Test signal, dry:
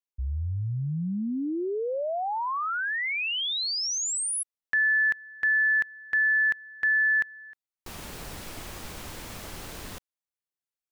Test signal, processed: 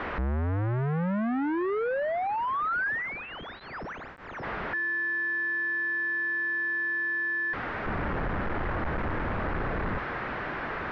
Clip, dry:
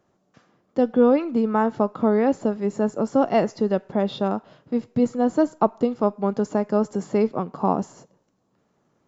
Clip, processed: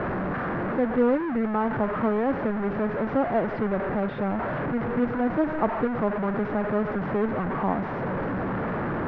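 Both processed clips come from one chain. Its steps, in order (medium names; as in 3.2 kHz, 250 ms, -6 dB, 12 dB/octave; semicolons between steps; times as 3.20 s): one-bit delta coder 32 kbps, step -16.5 dBFS; Chebyshev low-pass 1.7 kHz, order 3; trim -4.5 dB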